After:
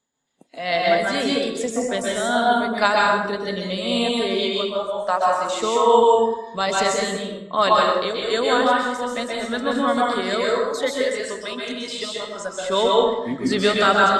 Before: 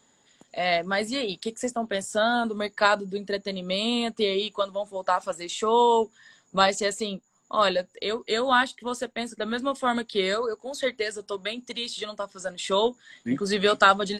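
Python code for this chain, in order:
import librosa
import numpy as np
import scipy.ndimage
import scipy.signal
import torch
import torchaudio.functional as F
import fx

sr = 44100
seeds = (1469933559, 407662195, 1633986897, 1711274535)

y = x * (1.0 - 0.55 / 2.0 + 0.55 / 2.0 * np.cos(2.0 * np.pi * 2.5 * (np.arange(len(x)) / sr)))
y = fx.rev_plate(y, sr, seeds[0], rt60_s=1.0, hf_ratio=0.6, predelay_ms=115, drr_db=-3.5)
y = fx.noise_reduce_blind(y, sr, reduce_db=18)
y = F.gain(torch.from_numpy(y), 3.0).numpy()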